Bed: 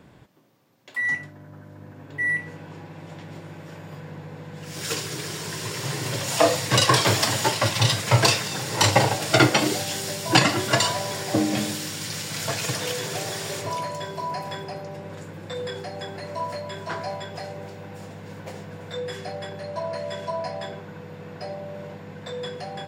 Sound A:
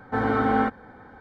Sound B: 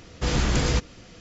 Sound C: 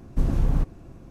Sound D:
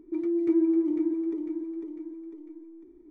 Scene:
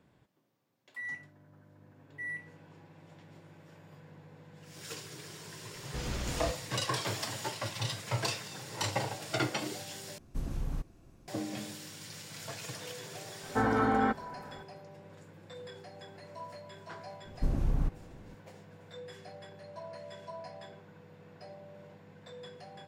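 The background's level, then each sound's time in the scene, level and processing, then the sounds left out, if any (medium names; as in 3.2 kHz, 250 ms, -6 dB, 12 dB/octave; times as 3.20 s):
bed -15 dB
5.72 s: add B -14 dB
10.18 s: replace with C -13.5 dB + treble shelf 2.2 kHz +10 dB
13.43 s: add A -17.5 dB + loudness maximiser +14.5 dB
17.25 s: add C -7.5 dB
not used: D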